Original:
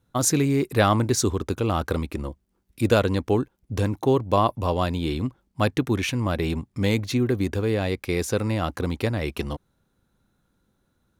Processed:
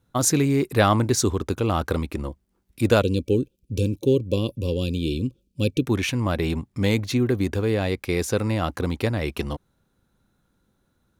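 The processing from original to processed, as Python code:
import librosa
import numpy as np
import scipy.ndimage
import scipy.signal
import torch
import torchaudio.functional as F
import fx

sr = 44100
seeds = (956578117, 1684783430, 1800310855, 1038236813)

y = fx.spec_box(x, sr, start_s=3.01, length_s=2.86, low_hz=570.0, high_hz=2300.0, gain_db=-24)
y = y * librosa.db_to_amplitude(1.0)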